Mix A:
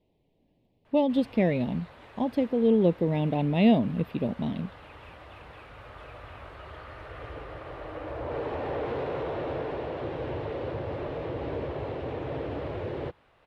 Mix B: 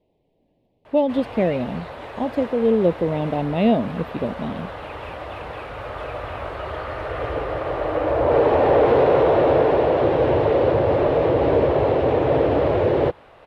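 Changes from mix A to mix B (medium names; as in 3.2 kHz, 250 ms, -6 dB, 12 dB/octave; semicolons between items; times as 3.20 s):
background +11.0 dB; master: add peaking EQ 590 Hz +6.5 dB 1.7 oct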